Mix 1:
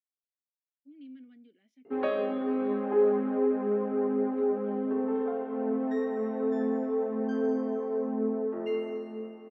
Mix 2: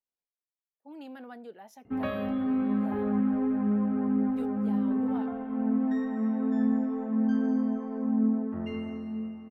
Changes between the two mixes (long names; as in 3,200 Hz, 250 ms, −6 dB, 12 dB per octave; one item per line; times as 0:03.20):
speech: remove formant filter i
background: remove high-pass with resonance 410 Hz, resonance Q 3.9